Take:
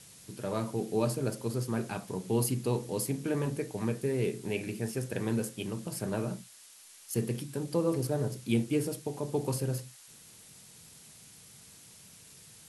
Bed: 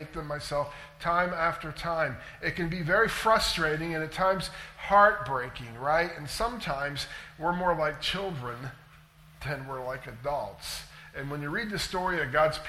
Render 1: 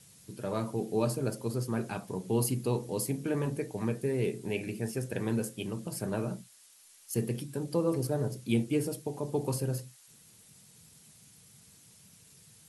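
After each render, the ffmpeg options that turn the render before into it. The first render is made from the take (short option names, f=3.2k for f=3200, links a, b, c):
-af "afftdn=nr=6:nf=-54"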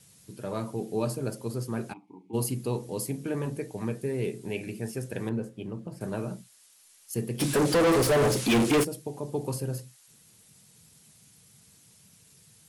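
-filter_complex "[0:a]asplit=3[a][b][c];[a]afade=t=out:st=1.92:d=0.02[d];[b]asplit=3[e][f][g];[e]bandpass=f=300:t=q:w=8,volume=0dB[h];[f]bandpass=f=870:t=q:w=8,volume=-6dB[i];[g]bandpass=f=2.24k:t=q:w=8,volume=-9dB[j];[h][i][j]amix=inputs=3:normalize=0,afade=t=in:st=1.92:d=0.02,afade=t=out:st=2.33:d=0.02[k];[c]afade=t=in:st=2.33:d=0.02[l];[d][k][l]amix=inputs=3:normalize=0,asettb=1/sr,asplit=3[m][n][o];[m]atrim=end=5.294[p];[n]atrim=start=5.29:end=6.01,asetpts=PTS-STARTPTS,afade=t=in:d=0.004:c=qsin,afade=t=out:st=0.716:d=0.004:c=qsin,lowpass=f=1.1k:p=1[q];[o]atrim=start=6.006[r];[p][q]acrossfade=d=0.004:c1=hsin:c2=qsin[s];[s][r]acrossfade=d=0.004:c1=qsin:c2=hsin,asplit=3[t][u][v];[t]afade=t=out:st=7.39:d=0.02[w];[u]asplit=2[x][y];[y]highpass=f=720:p=1,volume=35dB,asoftclip=type=tanh:threshold=-14.5dB[z];[x][z]amix=inputs=2:normalize=0,lowpass=f=4.2k:p=1,volume=-6dB,afade=t=in:st=7.39:d=0.02,afade=t=out:st=8.83:d=0.02[aa];[v]afade=t=in:st=8.83:d=0.02[ab];[w][aa][ab]amix=inputs=3:normalize=0"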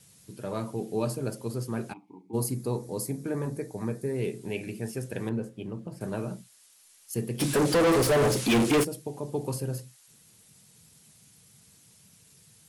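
-filter_complex "[0:a]asettb=1/sr,asplit=3[a][b][c];[a]atrim=end=2.214[d];[b]atrim=start=2.21:end=4.16,asetpts=PTS-STARTPTS,afade=t=in:d=0.004:c=qsin,afade=t=out:st=1.946:d=0.004:c=qsin,equalizer=f=2.9k:t=o:w=0.44:g=-13[e];[c]atrim=start=4.156[f];[d][e]acrossfade=d=0.004:c1=hsin:c2=qsin[g];[g][f]acrossfade=d=0.004:c1=qsin:c2=hsin"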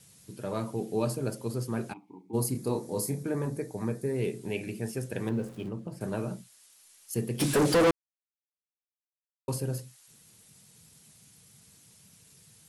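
-filter_complex "[0:a]asettb=1/sr,asplit=3[a][b][c];[a]atrim=end=2.524[d];[b]atrim=start=2.52:end=3.23,asetpts=PTS-STARTPTS,afade=t=in:d=0.004:c=qsin,afade=t=out:st=0.706:d=0.004:c=qsin,asplit=2[e][f];[f]adelay=28,volume=-4dB[g];[e][g]amix=inputs=2:normalize=0,atrim=end_sample=31311[h];[c]atrim=start=3.226[i];[d][h]acrossfade=d=0.004:c1=hsin:c2=qsin[j];[j][i]acrossfade=d=0.004:c1=qsin:c2=hsin,asettb=1/sr,asplit=3[k][l][m];[k]atrim=end=5.274[n];[l]atrim=start=5.27:end=5.69,asetpts=PTS-STARTPTS,afade=t=in:d=0.004:c=qsin,afade=t=out:st=0.416:d=0.004:c=qsin,aeval=exprs='val(0)+0.5*0.00447*sgn(val(0))':c=same[o];[m]atrim=start=5.686[p];[n][o]acrossfade=d=0.004:c1=hsin:c2=qsin[q];[q][p]acrossfade=d=0.004:c1=qsin:c2=hsin,asplit=3[r][s][t];[r]atrim=end=7.91,asetpts=PTS-STARTPTS,afade=t=out:st=7.906:d=0.004:c=hsin[u];[s]atrim=start=7.91:end=9.48,asetpts=PTS-STARTPTS,volume=0[v];[t]atrim=start=9.48,asetpts=PTS-STARTPTS,afade=t=in:d=0.004:c=hsin[w];[u][v][w]concat=n=3:v=0:a=1"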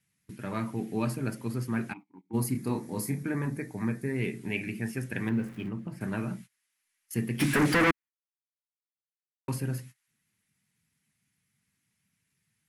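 -af "agate=range=-19dB:threshold=-46dB:ratio=16:detection=peak,equalizer=f=250:t=o:w=1:g=5,equalizer=f=500:t=o:w=1:g=-9,equalizer=f=2k:t=o:w=1:g=11,equalizer=f=4k:t=o:w=1:g=-4,equalizer=f=8k:t=o:w=1:g=-5"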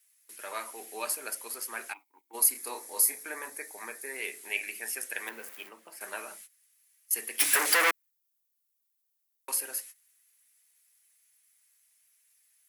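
-af "highpass=f=510:w=0.5412,highpass=f=510:w=1.3066,aemphasis=mode=production:type=75fm"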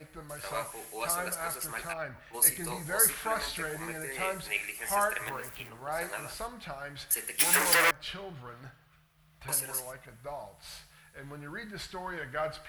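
-filter_complex "[1:a]volume=-9.5dB[a];[0:a][a]amix=inputs=2:normalize=0"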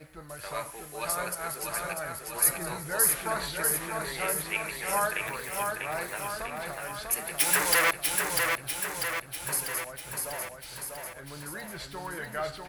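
-af "aecho=1:1:645|1290|1935|2580|3225|3870|4515|5160:0.631|0.372|0.22|0.13|0.0765|0.0451|0.0266|0.0157"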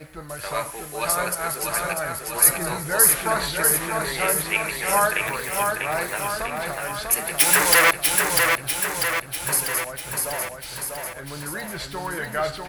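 -af "volume=8dB,alimiter=limit=-1dB:level=0:latency=1"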